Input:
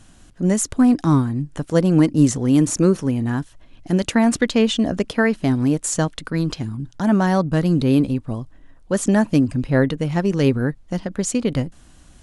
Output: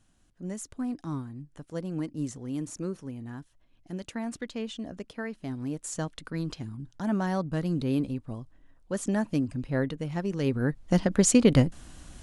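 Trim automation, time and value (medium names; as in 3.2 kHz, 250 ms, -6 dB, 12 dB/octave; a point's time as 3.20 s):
5.34 s -18 dB
6.18 s -11 dB
10.45 s -11 dB
10.93 s +1.5 dB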